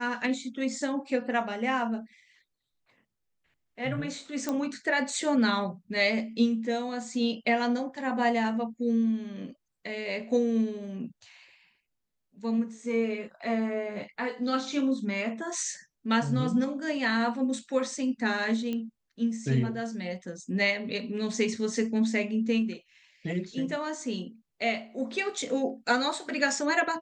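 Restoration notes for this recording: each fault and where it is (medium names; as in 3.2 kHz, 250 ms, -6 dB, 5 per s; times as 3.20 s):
4.49 s: pop -16 dBFS
18.73 s: pop -21 dBFS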